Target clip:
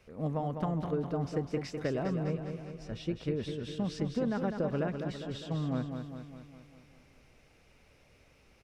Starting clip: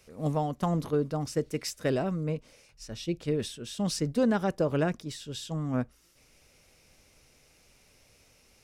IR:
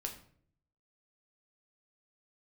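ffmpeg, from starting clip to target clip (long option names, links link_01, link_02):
-filter_complex "[0:a]acrossover=split=7500[link_01][link_02];[link_02]acompressor=threshold=-58dB:ratio=4:attack=1:release=60[link_03];[link_01][link_03]amix=inputs=2:normalize=0,bass=frequency=250:gain=1,treble=frequency=4000:gain=-14,acompressor=threshold=-29dB:ratio=6,asplit=2[link_04][link_05];[link_05]aecho=0:1:203|406|609|812|1015|1218|1421:0.473|0.27|0.154|0.0876|0.0499|0.0285|0.0162[link_06];[link_04][link_06]amix=inputs=2:normalize=0"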